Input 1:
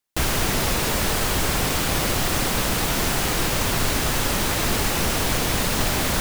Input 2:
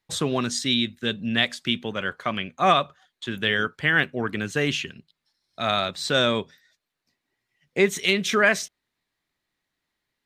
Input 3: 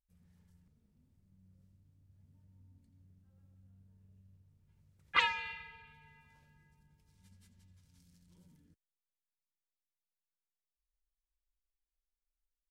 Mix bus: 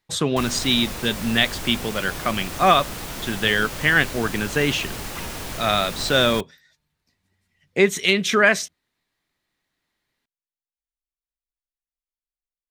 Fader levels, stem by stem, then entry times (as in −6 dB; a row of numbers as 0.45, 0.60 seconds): −10.0, +3.0, −10.0 decibels; 0.20, 0.00, 0.00 seconds